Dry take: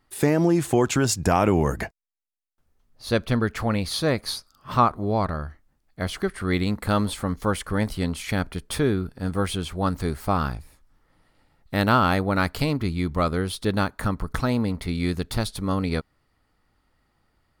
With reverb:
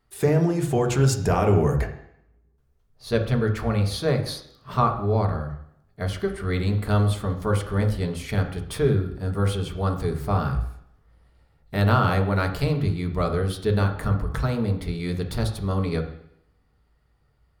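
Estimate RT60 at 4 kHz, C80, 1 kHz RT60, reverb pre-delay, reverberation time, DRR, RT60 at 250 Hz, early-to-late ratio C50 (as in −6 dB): 0.70 s, 12.0 dB, 0.70 s, 3 ms, 0.70 s, 2.0 dB, 0.75 s, 9.0 dB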